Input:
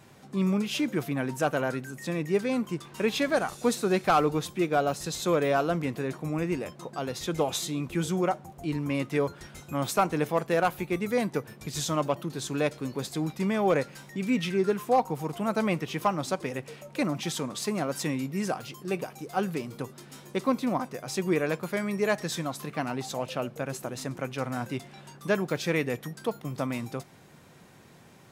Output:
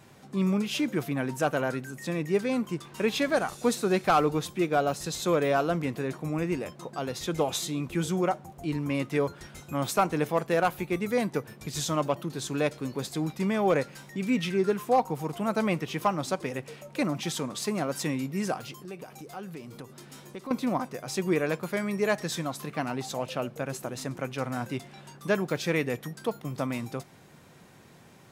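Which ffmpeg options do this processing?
ffmpeg -i in.wav -filter_complex "[0:a]asettb=1/sr,asplit=3[link_01][link_02][link_03];[link_01]atrim=end=18.724[link_04];[link_02]atrim=start=18.72:end=20.51,asetpts=PTS-STARTPTS,afade=type=in:duration=0.004:curve=qsin,afade=type=out:start_time=1.786:duration=0.004:curve=qsin,acompressor=threshold=-41dB:ratio=2.5:attack=3.2:release=140:knee=1:detection=peak[link_05];[link_03]atrim=start=20.506[link_06];[link_04][link_05]acrossfade=duration=0.004:curve1=hsin:curve2=qsin[link_07];[link_07][link_06]acrossfade=duration=0.004:curve1=qsin:curve2=hsin" out.wav

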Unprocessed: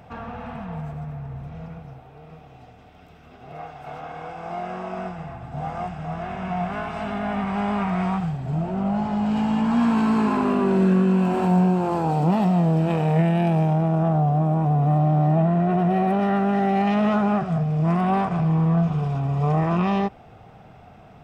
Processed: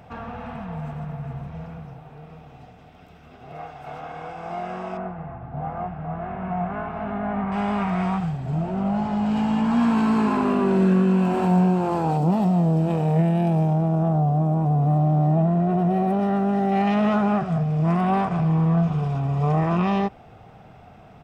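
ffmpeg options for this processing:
ffmpeg -i in.wav -filter_complex "[0:a]asplit=2[link_01][link_02];[link_02]afade=type=in:start_time=0.4:duration=0.01,afade=type=out:start_time=1.02:duration=0.01,aecho=0:1:410|820|1230|1640|2050|2460|2870|3280:0.421697|0.253018|0.151811|0.0910864|0.0546519|0.0327911|0.0196747|0.0118048[link_03];[link_01][link_03]amix=inputs=2:normalize=0,asettb=1/sr,asplit=3[link_04][link_05][link_06];[link_04]atrim=end=4.974[link_07];[link_05]atrim=start=4.97:end=7.52,asetpts=PTS-STARTPTS,afade=type=in:duration=0.004:curve=qsin,afade=type=out:start_time=2.546:duration=0.004:curve=qsin,lowpass=1600[link_08];[link_06]atrim=start=7.516[link_09];[link_07][link_08]acrossfade=duration=0.004:curve1=hsin:curve2=qsin[link_10];[link_10][link_09]acrossfade=duration=0.004:curve1=qsin:curve2=hsin,asettb=1/sr,asplit=3[link_11][link_12][link_13];[link_11]atrim=end=12.174[link_14];[link_12]atrim=start=12.17:end=16.72,asetpts=PTS-STARTPTS,afade=type=in:duration=0.004:curve=qsin,afade=type=out:start_time=4.546:duration=0.004:curve=qsin,equalizer=frequency=2100:width_type=o:width=1.9:gain=-7.5[link_15];[link_13]atrim=start=16.716[link_16];[link_14][link_15]acrossfade=duration=0.004:curve1=hsin:curve2=qsin[link_17];[link_17][link_16]acrossfade=duration=0.004:curve1=qsin:curve2=hsin" out.wav

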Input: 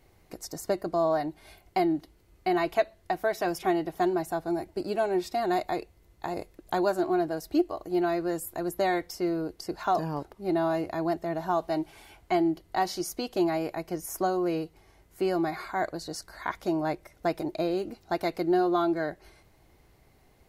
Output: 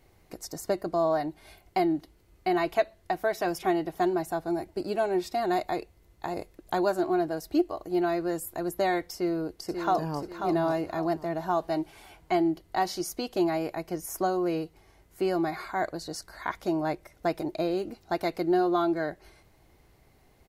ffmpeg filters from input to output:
ffmpeg -i in.wav -filter_complex "[0:a]asplit=2[link_01][link_02];[link_02]afade=type=in:start_time=9.14:duration=0.01,afade=type=out:start_time=10.18:duration=0.01,aecho=0:1:540|1080|1620|2160:0.473151|0.165603|0.057961|0.0202864[link_03];[link_01][link_03]amix=inputs=2:normalize=0" out.wav

